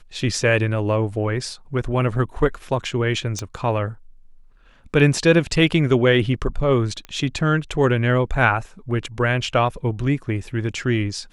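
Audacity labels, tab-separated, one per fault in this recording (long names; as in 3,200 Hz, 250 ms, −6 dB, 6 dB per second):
3.390000	3.390000	click −14 dBFS
7.050000	7.050000	click −20 dBFS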